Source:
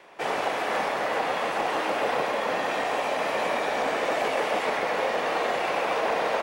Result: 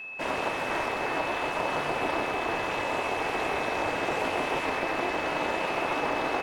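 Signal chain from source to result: ring modulator 170 Hz; whine 2600 Hz -37 dBFS

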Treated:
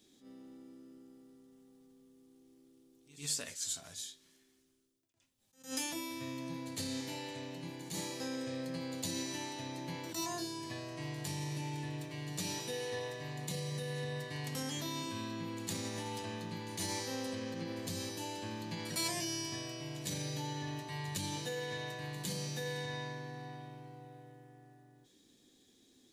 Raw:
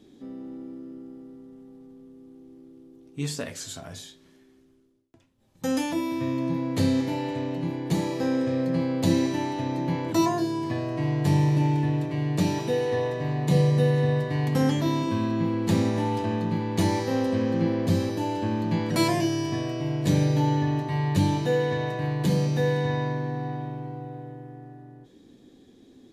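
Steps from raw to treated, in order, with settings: bell 12000 Hz -8.5 dB 0.26 oct; limiter -17 dBFS, peak gain reduction 6 dB; pre-emphasis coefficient 0.9; on a send: reverse echo 0.107 s -17.5 dB; on the sum: attack slew limiter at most 170 dB/s; gain +3.5 dB

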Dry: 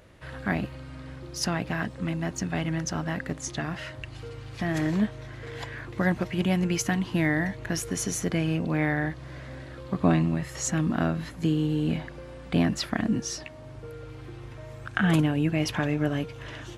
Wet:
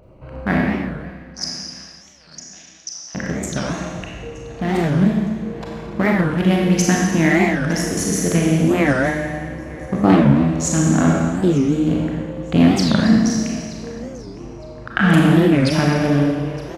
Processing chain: Wiener smoothing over 25 samples; 1.01–3.15 band-pass 5400 Hz, Q 4.3; feedback echo 0.911 s, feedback 31%, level -20 dB; Schroeder reverb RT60 1.7 s, combs from 28 ms, DRR -2.5 dB; record warp 45 rpm, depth 250 cents; gain +7 dB

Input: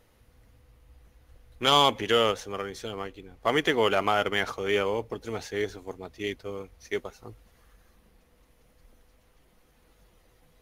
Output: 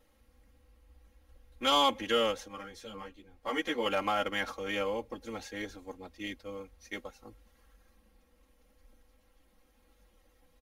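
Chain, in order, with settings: comb 3.7 ms, depth 96%; 2.48–3.86 ensemble effect; gain -8 dB

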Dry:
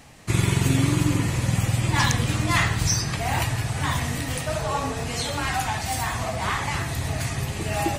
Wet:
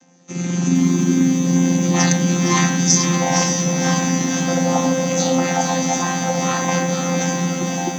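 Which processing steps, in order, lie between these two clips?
chord vocoder bare fifth, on F3; AGC gain up to 13 dB; synth low-pass 6200 Hz, resonance Q 13; on a send: diffused feedback echo 0.553 s, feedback 48%, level -5 dB; on the sum: lo-fi delay 0.462 s, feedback 35%, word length 6-bit, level -7 dB; gain -4.5 dB

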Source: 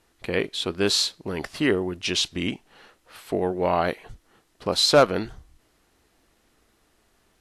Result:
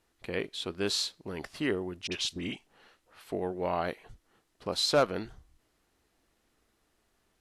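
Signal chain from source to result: 2.07–3.24 dispersion highs, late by 51 ms, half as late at 1500 Hz; gain -8.5 dB

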